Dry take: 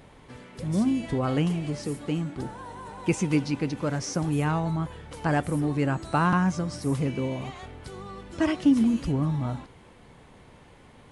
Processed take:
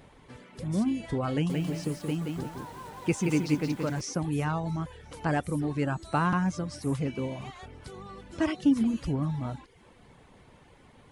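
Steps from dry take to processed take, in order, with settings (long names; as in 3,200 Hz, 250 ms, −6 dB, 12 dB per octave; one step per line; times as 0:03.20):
reverb reduction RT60 0.5 s
delay with a high-pass on its return 339 ms, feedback 61%, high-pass 2,600 Hz, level −23 dB
0:01.32–0:04.01: feedback echo at a low word length 175 ms, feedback 35%, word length 8 bits, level −3.5 dB
level −2.5 dB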